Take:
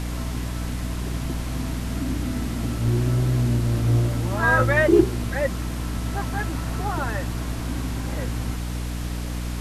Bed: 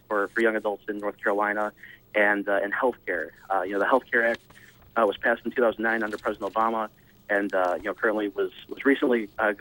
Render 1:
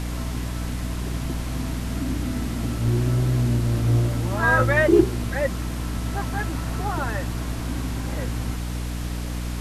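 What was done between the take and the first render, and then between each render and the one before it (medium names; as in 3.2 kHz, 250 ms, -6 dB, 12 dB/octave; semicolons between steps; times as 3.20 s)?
no audible change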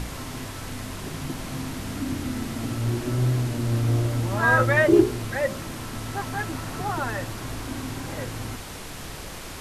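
de-hum 60 Hz, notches 11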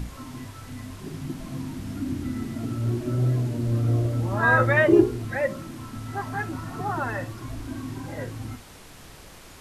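noise print and reduce 9 dB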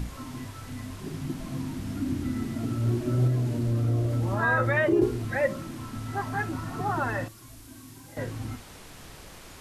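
3.27–5.02 s: compression 2:1, threshold -23 dBFS; 7.28–8.17 s: pre-emphasis filter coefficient 0.8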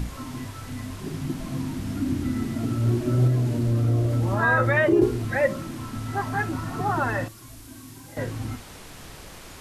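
trim +3.5 dB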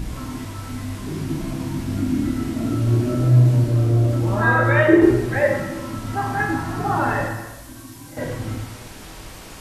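plate-style reverb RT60 1.1 s, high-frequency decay 0.9×, DRR -1.5 dB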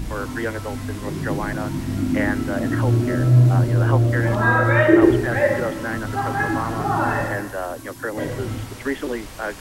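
add bed -4 dB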